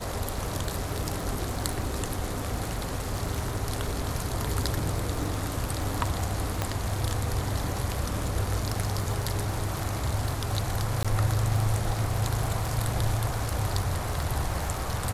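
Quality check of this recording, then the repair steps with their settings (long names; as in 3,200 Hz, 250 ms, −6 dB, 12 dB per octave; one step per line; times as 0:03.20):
surface crackle 31 per second −32 dBFS
0:06.62: click −11 dBFS
0:11.03–0:11.05: drop-out 16 ms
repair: click removal
repair the gap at 0:11.03, 16 ms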